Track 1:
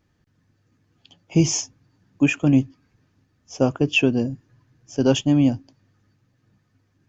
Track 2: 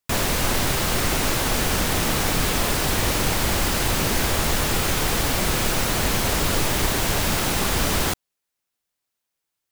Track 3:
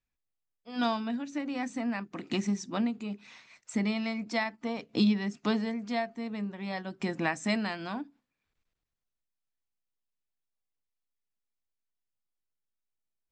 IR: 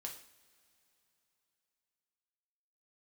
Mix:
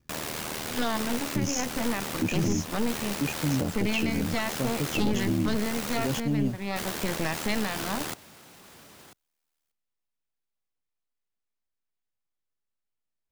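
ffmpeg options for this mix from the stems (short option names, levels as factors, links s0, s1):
-filter_complex "[0:a]bass=f=250:g=8,treble=f=4000:g=5,volume=0.708,asplit=2[s0][s1];[s1]volume=0.282[s2];[1:a]highpass=130,alimiter=limit=0.075:level=0:latency=1,volume=1.06,asplit=3[s3][s4][s5];[s3]atrim=end=6.2,asetpts=PTS-STARTPTS,afade=t=out:st=6.196:d=0.004:c=hsin[s6];[s4]atrim=start=6.2:end=6.76,asetpts=PTS-STARTPTS,volume=0[s7];[s5]atrim=start=6.76,asetpts=PTS-STARTPTS,afade=t=in:d=0.004:c=hsin[s8];[s6][s7][s8]concat=n=3:v=0:a=1,asplit=2[s9][s10];[s10]volume=0.1[s11];[2:a]highshelf=f=5300:g=-9,aeval=exprs='0.224*(cos(1*acos(clip(val(0)/0.224,-1,1)))-cos(1*PI/2))+0.0447*(cos(8*acos(clip(val(0)/0.224,-1,1)))-cos(8*PI/2))':c=same,volume=1.19[s12];[s0][s9]amix=inputs=2:normalize=0,aeval=exprs='val(0)*sin(2*PI*39*n/s)':c=same,alimiter=limit=0.188:level=0:latency=1:release=307,volume=1[s13];[s2][s11]amix=inputs=2:normalize=0,aecho=0:1:993:1[s14];[s12][s13][s14]amix=inputs=3:normalize=0,alimiter=limit=0.141:level=0:latency=1:release=21"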